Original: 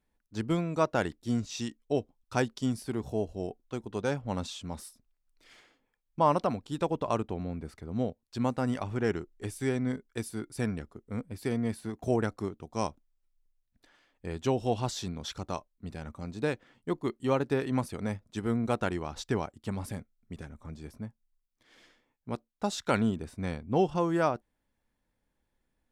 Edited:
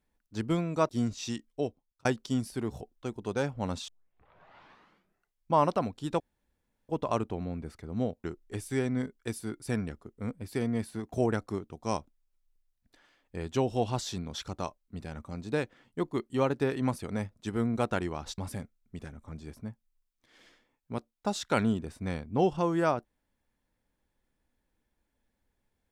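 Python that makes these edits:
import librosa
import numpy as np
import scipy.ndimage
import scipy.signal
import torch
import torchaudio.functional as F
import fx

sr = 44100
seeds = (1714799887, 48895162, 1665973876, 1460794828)

y = fx.edit(x, sr, fx.cut(start_s=0.89, length_s=0.32),
    fx.fade_out_span(start_s=1.79, length_s=0.58),
    fx.cut(start_s=3.13, length_s=0.36),
    fx.tape_start(start_s=4.56, length_s=1.63),
    fx.insert_room_tone(at_s=6.88, length_s=0.69),
    fx.cut(start_s=8.23, length_s=0.91),
    fx.cut(start_s=19.28, length_s=0.47), tone=tone)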